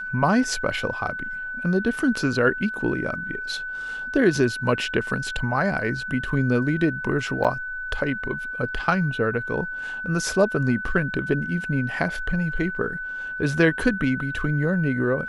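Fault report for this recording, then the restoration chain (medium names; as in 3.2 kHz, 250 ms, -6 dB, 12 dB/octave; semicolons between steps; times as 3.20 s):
whine 1.5 kHz -29 dBFS
7.44–7.45 s: dropout 6.9 ms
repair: band-stop 1.5 kHz, Q 30; interpolate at 7.44 s, 6.9 ms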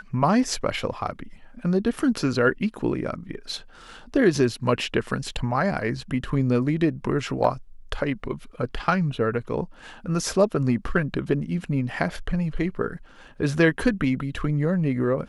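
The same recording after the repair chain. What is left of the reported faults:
nothing left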